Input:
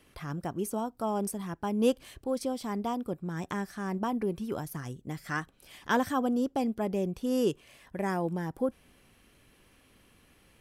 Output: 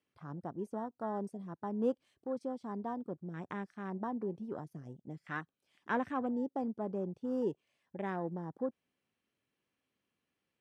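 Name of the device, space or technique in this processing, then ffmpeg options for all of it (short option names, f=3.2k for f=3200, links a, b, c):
over-cleaned archive recording: -af "highpass=130,lowpass=7.6k,afwtdn=0.01,volume=-6.5dB"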